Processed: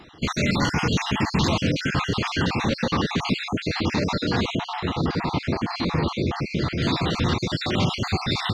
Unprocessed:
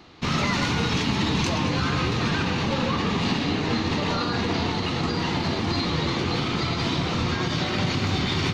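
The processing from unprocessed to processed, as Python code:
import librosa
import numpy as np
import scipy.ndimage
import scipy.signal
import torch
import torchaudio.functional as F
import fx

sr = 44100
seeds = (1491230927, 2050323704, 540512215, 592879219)

y = fx.spec_dropout(x, sr, seeds[0], share_pct=50)
y = fx.high_shelf(y, sr, hz=3200.0, db=-9.5, at=(4.55, 6.82))
y = F.gain(torch.from_numpy(y), 3.5).numpy()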